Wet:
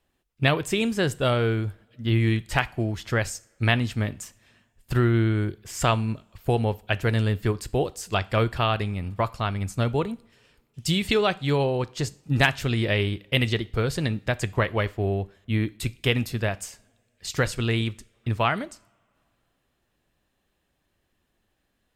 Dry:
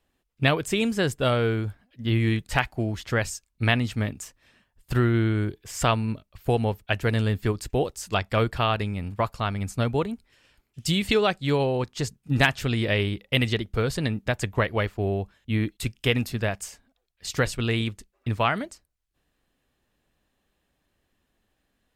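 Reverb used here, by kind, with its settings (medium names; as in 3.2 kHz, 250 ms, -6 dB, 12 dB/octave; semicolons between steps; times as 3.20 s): two-slope reverb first 0.43 s, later 2.7 s, from -26 dB, DRR 16 dB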